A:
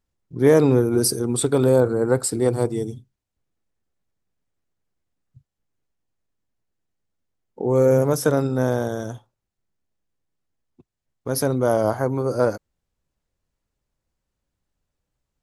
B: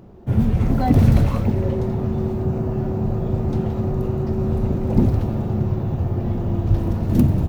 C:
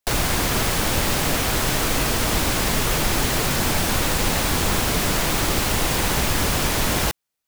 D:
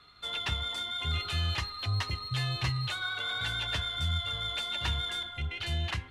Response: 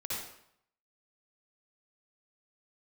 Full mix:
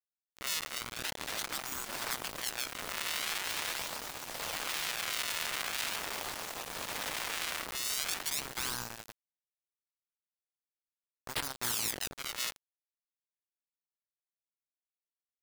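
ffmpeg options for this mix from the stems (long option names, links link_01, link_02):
-filter_complex "[0:a]lowshelf=frequency=450:width_type=q:width=3:gain=-9.5,volume=-4.5dB,asplit=2[link_01][link_02];[1:a]crystalizer=i=9:c=0,adelay=900,volume=2dB[link_03];[2:a]equalizer=frequency=330:width=0.58:gain=10.5,adelay=1650,volume=-11dB[link_04];[3:a]flanger=delay=18:depth=6.8:speed=0.8,volume=-7dB[link_05];[link_02]apad=whole_len=369605[link_06];[link_03][link_06]sidechaincompress=threshold=-36dB:ratio=16:attack=11:release=526[link_07];[link_01][link_07]amix=inputs=2:normalize=0,acrusher=samples=31:mix=1:aa=0.000001:lfo=1:lforange=49.6:lforate=0.42,alimiter=limit=-14.5dB:level=0:latency=1:release=402,volume=0dB[link_08];[link_04][link_05]amix=inputs=2:normalize=0,flanger=delay=7.6:depth=4.7:regen=-78:speed=0.31:shape=triangular,alimiter=level_in=7.5dB:limit=-24dB:level=0:latency=1:release=128,volume=-7.5dB,volume=0dB[link_09];[link_08][link_09]amix=inputs=2:normalize=0,afftfilt=real='re*lt(hypot(re,im),0.0794)':imag='im*lt(hypot(re,im),0.0794)':win_size=1024:overlap=0.75,aeval=exprs='val(0)*gte(abs(val(0)),0.0211)':channel_layout=same"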